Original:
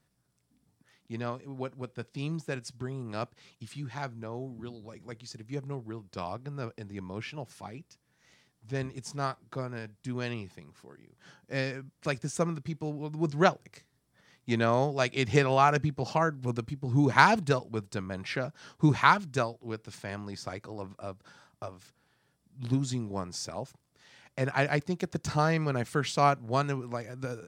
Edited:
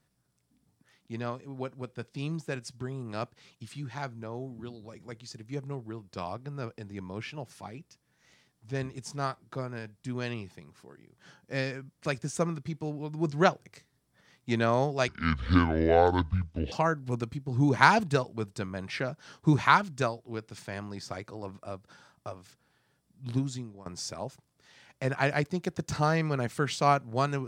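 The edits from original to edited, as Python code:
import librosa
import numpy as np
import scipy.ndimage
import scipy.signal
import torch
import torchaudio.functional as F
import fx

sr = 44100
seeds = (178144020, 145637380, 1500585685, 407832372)

y = fx.edit(x, sr, fx.speed_span(start_s=15.08, length_s=1.0, speed=0.61),
    fx.fade_out_to(start_s=22.66, length_s=0.56, floor_db=-20.5), tone=tone)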